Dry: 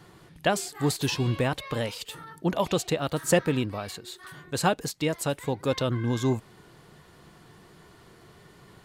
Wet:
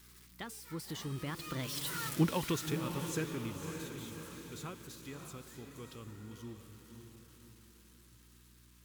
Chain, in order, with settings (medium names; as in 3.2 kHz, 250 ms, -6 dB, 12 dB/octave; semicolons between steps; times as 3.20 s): zero-crossing glitches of -26.5 dBFS; Doppler pass-by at 2.06 s, 41 m/s, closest 6.8 m; FFT filter 370 Hz 0 dB, 690 Hz -12 dB, 1.1 kHz +1 dB, 13 kHz -6 dB; on a send: echo that smears into a reverb 578 ms, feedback 44%, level -7.5 dB; on the sum: hum 60 Hz, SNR 26 dB; in parallel at -1.5 dB: compression, threshold -47 dBFS, peak gain reduction 21 dB